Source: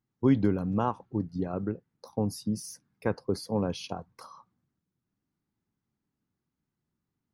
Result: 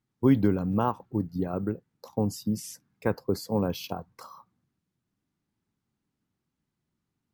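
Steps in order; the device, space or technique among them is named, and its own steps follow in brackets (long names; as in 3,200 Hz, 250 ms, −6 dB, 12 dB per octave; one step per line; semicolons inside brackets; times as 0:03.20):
crushed at another speed (tape speed factor 0.5×; decimation without filtering 5×; tape speed factor 2×)
level +2 dB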